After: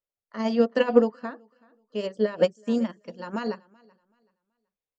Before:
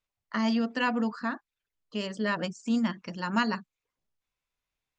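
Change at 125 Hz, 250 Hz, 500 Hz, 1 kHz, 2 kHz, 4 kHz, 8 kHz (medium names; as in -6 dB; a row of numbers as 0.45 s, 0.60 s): -1.0 dB, +1.0 dB, +12.5 dB, -2.5 dB, -5.0 dB, -2.5 dB, no reading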